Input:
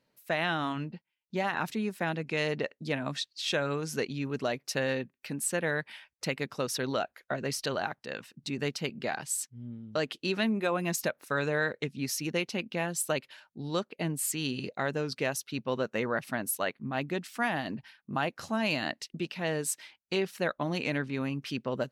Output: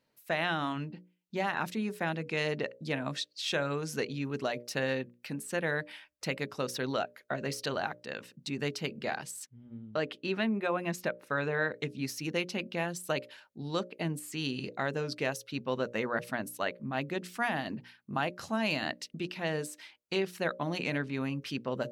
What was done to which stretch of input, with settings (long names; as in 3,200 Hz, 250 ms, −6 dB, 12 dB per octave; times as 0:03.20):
0:09.46–0:11.72: bass and treble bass −1 dB, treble −11 dB
whole clip: mains-hum notches 60/120/180/240/300/360/420/480/540/600 Hz; de-essing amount 70%; level −1 dB